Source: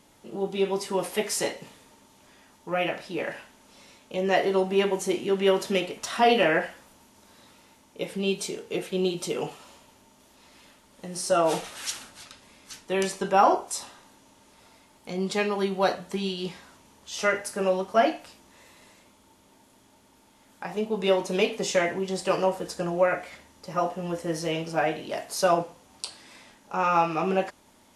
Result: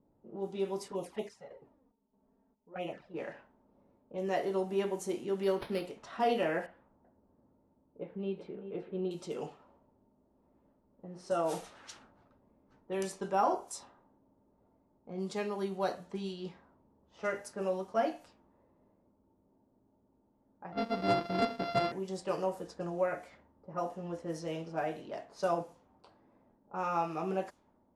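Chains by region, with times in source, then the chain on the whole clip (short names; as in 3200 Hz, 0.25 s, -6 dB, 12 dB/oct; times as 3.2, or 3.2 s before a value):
0.88–3.14 block floating point 7-bit + chopper 1.6 Hz, depth 65%, duty 65% + envelope flanger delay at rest 4.9 ms, full sweep at -23 dBFS
5.43–5.86 high shelf 5600 Hz +10.5 dB + decimation joined by straight lines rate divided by 6×
6.66–9.11 air absorption 460 m + echo 0.383 s -10 dB
20.72–21.92 sample sorter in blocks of 64 samples + steep low-pass 5200 Hz 72 dB/oct + sample leveller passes 1
whole clip: low-pass opened by the level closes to 560 Hz, open at -23.5 dBFS; bell 2700 Hz -7 dB 1.7 oct; gain -8.5 dB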